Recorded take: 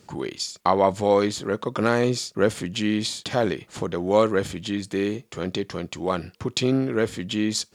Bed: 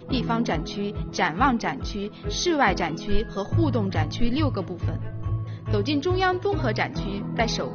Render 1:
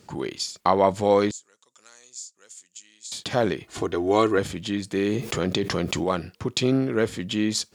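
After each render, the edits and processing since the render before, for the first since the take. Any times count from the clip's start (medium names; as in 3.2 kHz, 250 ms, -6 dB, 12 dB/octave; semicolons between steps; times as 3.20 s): 1.31–3.12 s: band-pass filter 7.2 kHz, Q 5.4; 3.63–4.38 s: comb 2.8 ms; 4.97–6.04 s: level flattener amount 70%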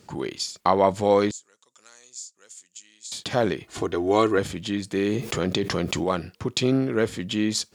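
no audible change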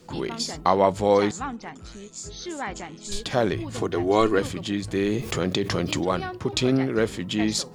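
add bed -11.5 dB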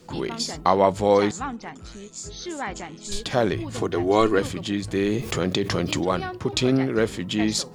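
trim +1 dB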